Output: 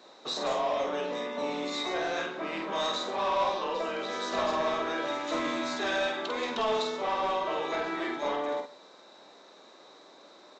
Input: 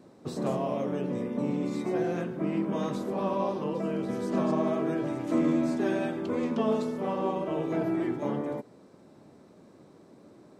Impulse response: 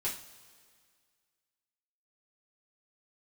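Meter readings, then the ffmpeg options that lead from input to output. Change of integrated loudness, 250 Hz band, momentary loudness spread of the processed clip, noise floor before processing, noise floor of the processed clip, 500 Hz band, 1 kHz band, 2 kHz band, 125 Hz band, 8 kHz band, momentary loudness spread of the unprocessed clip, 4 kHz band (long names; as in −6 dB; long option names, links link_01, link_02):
−1.0 dB, −9.5 dB, 5 LU, −55 dBFS, −54 dBFS, −0.5 dB, +5.5 dB, +9.0 dB, −16.5 dB, can't be measured, 5 LU, +14.5 dB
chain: -filter_complex "[0:a]highpass=770,equalizer=frequency=3800:width_type=o:width=0.21:gain=13.5,acontrast=89,aresample=16000,asoftclip=type=tanh:threshold=-24.5dB,aresample=44100,asplit=2[link_01][link_02];[link_02]adelay=48,volume=-5dB[link_03];[link_01][link_03]amix=inputs=2:normalize=0,asplit=2[link_04][link_05];[link_05]adelay=134.1,volume=-21dB,highshelf=frequency=4000:gain=-3.02[link_06];[link_04][link_06]amix=inputs=2:normalize=0,volume=1dB"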